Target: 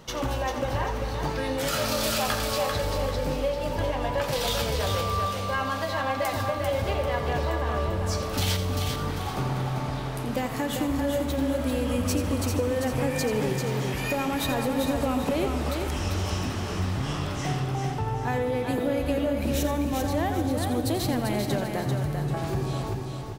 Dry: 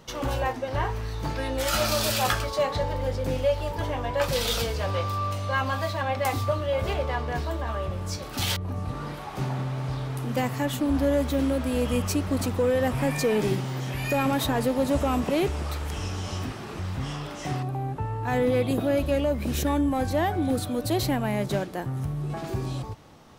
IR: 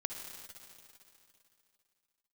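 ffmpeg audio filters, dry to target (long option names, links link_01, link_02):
-filter_complex "[0:a]acompressor=threshold=-27dB:ratio=6,aecho=1:1:393|786|1179|1572:0.562|0.197|0.0689|0.0241,asplit=2[link_01][link_02];[1:a]atrim=start_sample=2205,adelay=86[link_03];[link_02][link_03]afir=irnorm=-1:irlink=0,volume=-9dB[link_04];[link_01][link_04]amix=inputs=2:normalize=0,volume=2.5dB"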